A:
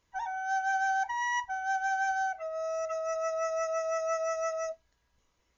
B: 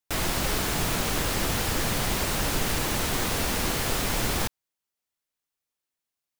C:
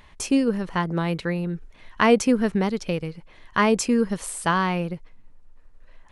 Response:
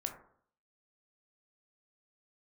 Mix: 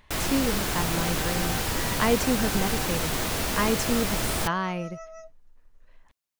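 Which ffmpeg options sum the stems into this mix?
-filter_complex "[0:a]adelay=550,volume=-10.5dB[link_01];[1:a]volume=-1dB[link_02];[2:a]volume=-6dB[link_03];[link_01][link_02][link_03]amix=inputs=3:normalize=0"

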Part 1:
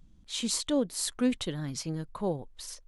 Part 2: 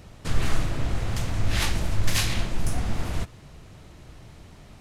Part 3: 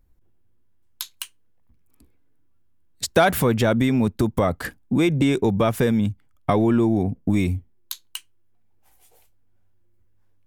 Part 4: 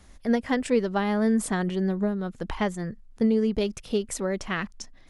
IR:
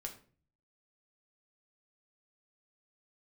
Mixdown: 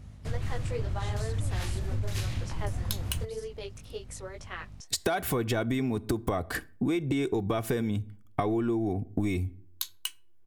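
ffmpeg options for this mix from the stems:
-filter_complex "[0:a]acompressor=threshold=-33dB:ratio=6,adelay=700,volume=-10.5dB[link_01];[1:a]equalizer=frequency=89:width_type=o:width=1.6:gain=13,aeval=exprs='val(0)+0.0158*(sin(2*PI*50*n/s)+sin(2*PI*2*50*n/s)/2+sin(2*PI*3*50*n/s)/3+sin(2*PI*4*50*n/s)/4+sin(2*PI*5*50*n/s)/5)':channel_layout=same,volume=-12dB[link_02];[2:a]aecho=1:1:2.7:0.41,adelay=1900,volume=-2.5dB,asplit=2[link_03][link_04];[link_04]volume=-10.5dB[link_05];[3:a]highpass=frequency=410:width=0.5412,highpass=frequency=410:width=1.3066,flanger=delay=16:depth=4.9:speed=2,volume=-6.5dB[link_06];[4:a]atrim=start_sample=2205[link_07];[link_05][link_07]afir=irnorm=-1:irlink=0[link_08];[link_01][link_02][link_03][link_06][link_08]amix=inputs=5:normalize=0,acompressor=threshold=-25dB:ratio=10"

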